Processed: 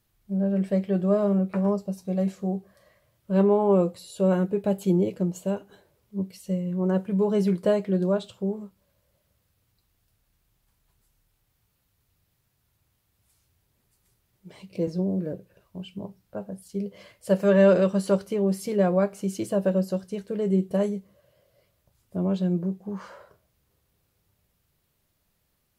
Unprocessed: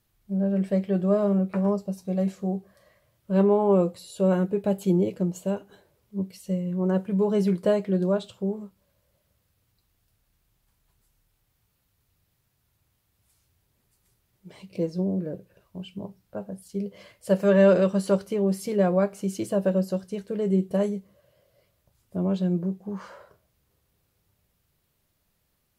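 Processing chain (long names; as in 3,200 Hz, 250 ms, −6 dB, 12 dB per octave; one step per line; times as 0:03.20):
0:14.87–0:15.33: multiband upward and downward compressor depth 40%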